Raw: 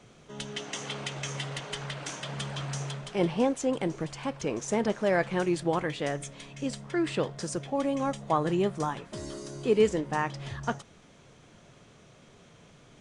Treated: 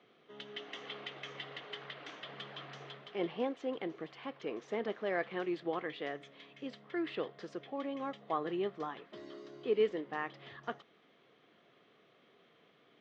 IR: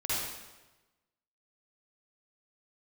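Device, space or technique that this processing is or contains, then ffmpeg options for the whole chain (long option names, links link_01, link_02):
phone earpiece: -af "highpass=400,equalizer=frequency=580:width_type=q:width=4:gain=-7,equalizer=frequency=910:width_type=q:width=4:gain=-10,equalizer=frequency=1500:width_type=q:width=4:gain=-6,equalizer=frequency=2500:width_type=q:width=4:gain=-6,lowpass=frequency=3300:width=0.5412,lowpass=frequency=3300:width=1.3066,volume=-3dB"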